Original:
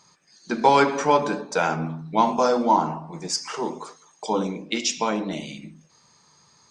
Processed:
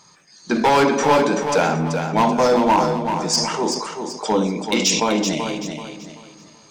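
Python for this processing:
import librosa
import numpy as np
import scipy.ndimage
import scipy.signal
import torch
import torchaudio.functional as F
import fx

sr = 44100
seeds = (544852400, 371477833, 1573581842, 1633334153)

p1 = fx.dynamic_eq(x, sr, hz=1300.0, q=1.1, threshold_db=-32.0, ratio=4.0, max_db=-4)
p2 = np.clip(p1, -10.0 ** (-17.0 / 20.0), 10.0 ** (-17.0 / 20.0))
p3 = p2 + fx.echo_feedback(p2, sr, ms=383, feedback_pct=33, wet_db=-7, dry=0)
p4 = fx.sustainer(p3, sr, db_per_s=52.0)
y = p4 * 10.0 ** (6.0 / 20.0)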